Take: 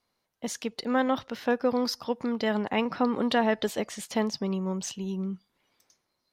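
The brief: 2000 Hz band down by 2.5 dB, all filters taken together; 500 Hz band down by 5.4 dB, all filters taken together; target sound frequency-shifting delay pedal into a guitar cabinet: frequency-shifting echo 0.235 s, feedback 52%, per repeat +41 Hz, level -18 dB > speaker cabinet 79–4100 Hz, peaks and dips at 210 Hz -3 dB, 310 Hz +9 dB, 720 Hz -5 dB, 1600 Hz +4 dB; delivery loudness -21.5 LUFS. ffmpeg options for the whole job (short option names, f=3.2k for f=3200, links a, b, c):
-filter_complex "[0:a]equalizer=f=500:t=o:g=-6,equalizer=f=2k:t=o:g=-6,asplit=5[a][b][c][d][e];[b]adelay=235,afreqshift=41,volume=-18dB[f];[c]adelay=470,afreqshift=82,volume=-23.7dB[g];[d]adelay=705,afreqshift=123,volume=-29.4dB[h];[e]adelay=940,afreqshift=164,volume=-35dB[i];[a][f][g][h][i]amix=inputs=5:normalize=0,highpass=79,equalizer=f=210:t=q:w=4:g=-3,equalizer=f=310:t=q:w=4:g=9,equalizer=f=720:t=q:w=4:g=-5,equalizer=f=1.6k:t=q:w=4:g=4,lowpass=f=4.1k:w=0.5412,lowpass=f=4.1k:w=1.3066,volume=10dB"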